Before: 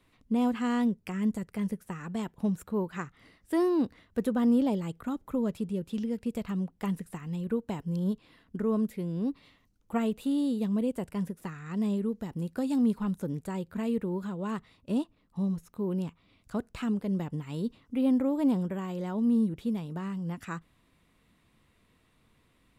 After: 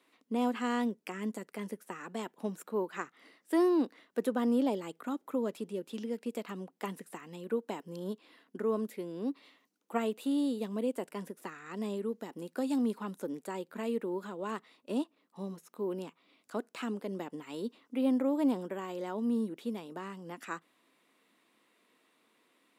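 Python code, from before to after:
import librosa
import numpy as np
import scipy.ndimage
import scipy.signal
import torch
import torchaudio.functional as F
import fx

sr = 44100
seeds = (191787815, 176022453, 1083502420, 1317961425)

y = scipy.signal.sosfilt(scipy.signal.butter(4, 270.0, 'highpass', fs=sr, output='sos'), x)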